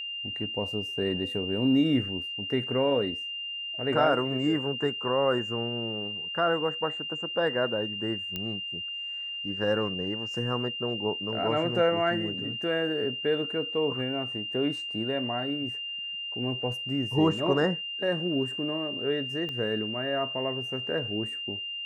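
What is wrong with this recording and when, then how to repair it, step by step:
whine 2.8 kHz -33 dBFS
8.36 s: pop -18 dBFS
19.49 s: pop -24 dBFS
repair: de-click; band-stop 2.8 kHz, Q 30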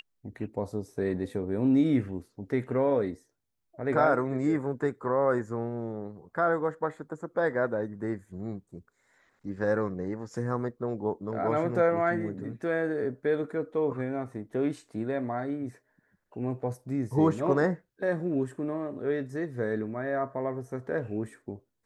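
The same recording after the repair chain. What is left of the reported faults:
19.49 s: pop

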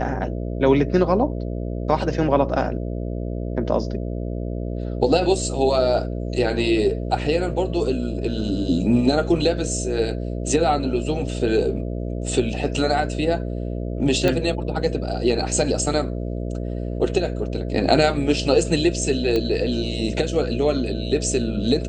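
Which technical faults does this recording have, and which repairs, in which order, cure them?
buzz 60 Hz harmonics 11 -27 dBFS
14.28 s: pop -8 dBFS
19.36 s: pop -11 dBFS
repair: de-click; de-hum 60 Hz, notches 11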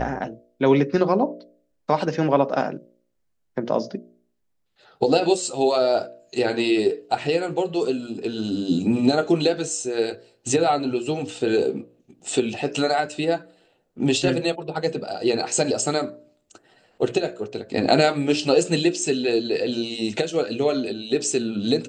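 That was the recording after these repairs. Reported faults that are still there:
nothing left

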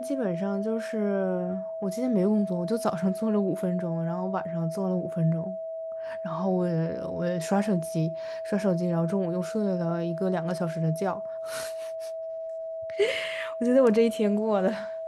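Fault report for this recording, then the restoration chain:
whine 650 Hz -32 dBFS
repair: band-stop 650 Hz, Q 30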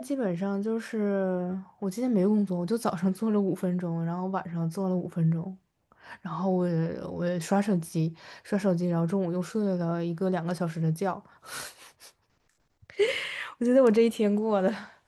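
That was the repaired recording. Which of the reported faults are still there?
nothing left

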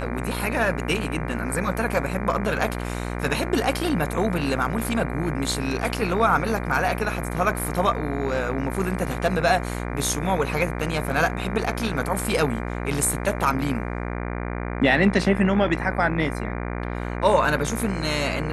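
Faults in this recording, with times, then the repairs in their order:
buzz 60 Hz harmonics 40 -29 dBFS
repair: de-hum 60 Hz, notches 40

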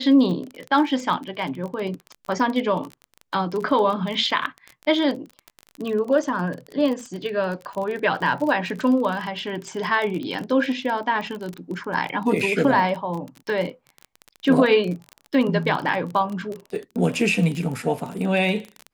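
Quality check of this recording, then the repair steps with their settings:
crackle 30 per s -27 dBFS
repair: de-click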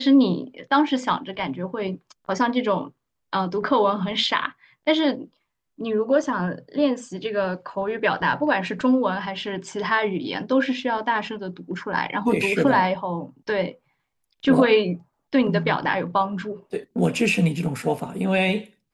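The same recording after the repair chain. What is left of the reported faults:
nothing left

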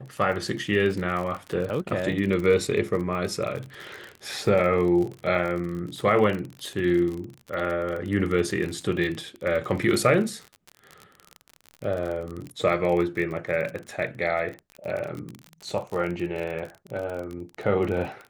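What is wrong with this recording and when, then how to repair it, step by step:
crackle 36 per s -30 dBFS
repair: de-click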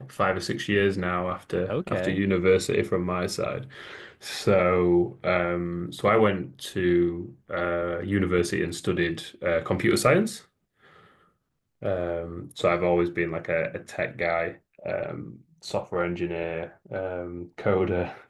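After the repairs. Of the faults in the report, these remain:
nothing left

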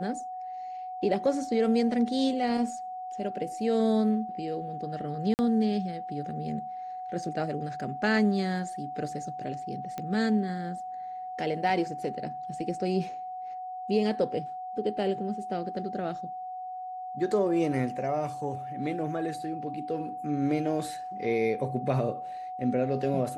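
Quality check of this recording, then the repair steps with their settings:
whine 740 Hz -35 dBFS
5.34–5.39 s: dropout 49 ms
9.98 s: pop -21 dBFS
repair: de-click; band-stop 740 Hz, Q 30; interpolate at 5.34 s, 49 ms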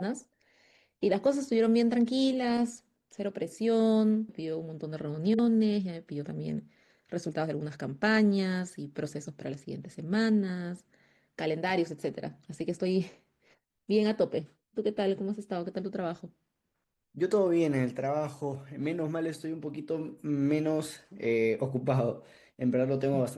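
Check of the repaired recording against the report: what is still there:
nothing left

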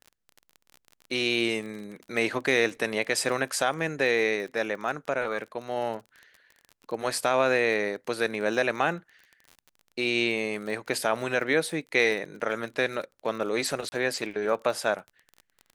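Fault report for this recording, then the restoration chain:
crackle 31 per s -36 dBFS
13.89–13.92 s: dropout 30 ms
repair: de-click; interpolate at 13.89 s, 30 ms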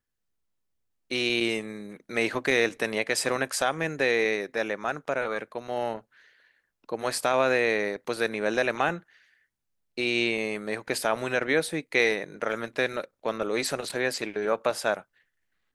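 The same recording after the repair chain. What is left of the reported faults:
nothing left

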